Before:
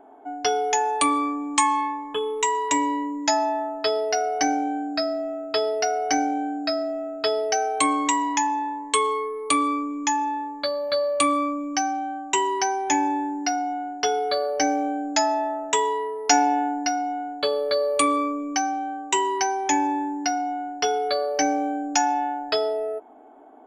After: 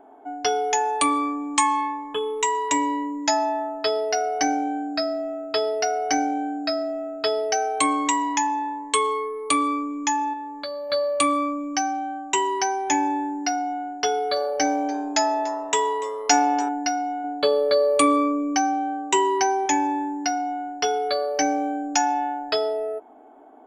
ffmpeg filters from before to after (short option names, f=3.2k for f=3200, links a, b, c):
-filter_complex "[0:a]asettb=1/sr,asplit=3[a][b][c];[a]atrim=end=10.334[d];[b]atrim=start=10.33:end=10.9,asetpts=PTS-STARTPTS,afade=t=in:d=0.004:c=qsin,afade=t=out:st=0.566:d=0.004:c=qsin,acompressor=threshold=-32dB:ratio=2:attack=3.2:release=140:knee=1:detection=peak[e];[c]atrim=start=10.896[f];[d][e]acrossfade=d=0.004:c1=hsin:c2=qsin[g];[g][f]acrossfade=d=0.004:c1=qsin:c2=hsin,asettb=1/sr,asplit=3[h][i][j];[h]atrim=end=14.074[k];[i]atrim=start=14.07:end=16.69,asetpts=PTS-STARTPTS,afade=t=in:d=0.004:c=qsin,afade=t=out:st=2.616:d=0.004:c=qsin,asplit=7[l][m][n][o][p][q][r];[m]adelay=290,afreqshift=110,volume=-19dB[s];[n]adelay=580,afreqshift=220,volume=-23.2dB[t];[o]adelay=870,afreqshift=330,volume=-27.3dB[u];[p]adelay=1160,afreqshift=440,volume=-31.5dB[v];[q]adelay=1450,afreqshift=550,volume=-35.6dB[w];[r]adelay=1740,afreqshift=660,volume=-39.8dB[x];[l][s][t][u][v][w][x]amix=inputs=7:normalize=0,atrim=end_sample=115542[y];[j]atrim=start=16.686[z];[k][y]acrossfade=d=0.004:c1=hsin:c2=qsin[aa];[aa][z]acrossfade=d=0.004:c1=qsin:c2=hsin,asettb=1/sr,asplit=3[ab][ac][ad];[ab]atrim=end=17.244[ae];[ac]atrim=start=17.24:end=19.66,asetpts=PTS-STARTPTS,afade=t=in:d=0.004:c=qsin,afade=t=out:st=2.416:d=0.004:c=qsin,equalizer=f=310:w=0.45:g=5[af];[ad]atrim=start=19.656[ag];[ae][af]acrossfade=d=0.004:c1=hsin:c2=qsin[ah];[ah][ag]acrossfade=d=0.004:c1=qsin:c2=hsin"